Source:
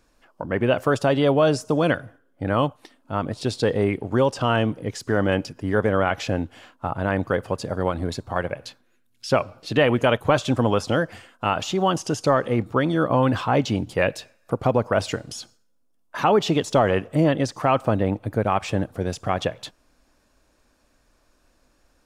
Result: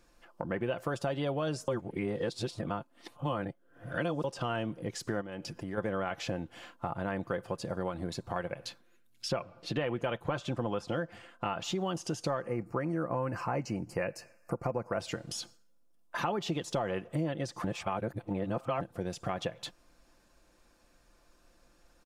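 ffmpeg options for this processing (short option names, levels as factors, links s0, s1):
-filter_complex "[0:a]asplit=3[s0][s1][s2];[s0]afade=t=out:st=5.2:d=0.02[s3];[s1]acompressor=threshold=0.0224:ratio=3:attack=3.2:release=140:knee=1:detection=peak,afade=t=in:st=5.2:d=0.02,afade=t=out:st=5.77:d=0.02[s4];[s2]afade=t=in:st=5.77:d=0.02[s5];[s3][s4][s5]amix=inputs=3:normalize=0,asettb=1/sr,asplit=3[s6][s7][s8];[s6]atrim=end=9.284[s9];[s7]atrim=start=9.28:end=11.64,asetpts=PTS-STARTPTS,afade=t=in:d=0.004:c=qsin,afade=t=out:st=2.356:d=0.004:c=qsin,highshelf=f=5200:g=-8.5[s10];[s8]atrim=start=11.636[s11];[s9][s10]acrossfade=d=0.004:c1=hsin:c2=qsin[s12];[s12][s11]acrossfade=d=0.004:c1=qsin:c2=hsin,asettb=1/sr,asplit=3[s13][s14][s15];[s13]atrim=end=12.424[s16];[s14]atrim=start=12.42:end=15,asetpts=PTS-STARTPTS,afade=t=in:d=0.004:c=qsin,afade=t=out:st=2.576:d=0.004:c=qsin,asuperstop=centerf=3500:order=4:qfactor=1.7[s17];[s15]atrim=start=14.996[s18];[s16][s17]acrossfade=d=0.004:c1=hsin:c2=qsin[s19];[s19][s18]acrossfade=d=0.004:c1=qsin:c2=hsin,asplit=5[s20][s21][s22][s23][s24];[s20]atrim=end=1.682[s25];[s21]atrim=start=1.678:end=4.242,asetpts=PTS-STARTPTS,areverse[s26];[s22]atrim=start=4.238:end=17.642[s27];[s23]atrim=start=17.638:end=18.812,asetpts=PTS-STARTPTS,areverse[s28];[s24]atrim=start=18.808[s29];[s25][s26]acrossfade=d=0.004:c1=hsin:c2=hsin[s30];[s30][s27]acrossfade=d=0.004:c1=hsin:c2=hsin[s31];[s31][s28]acrossfade=d=0.004:c1=hsin:c2=hsin[s32];[s32][s29]acrossfade=d=0.004:c1=hsin:c2=hsin,aecho=1:1:5.8:0.42,acompressor=threshold=0.0282:ratio=3,volume=0.75"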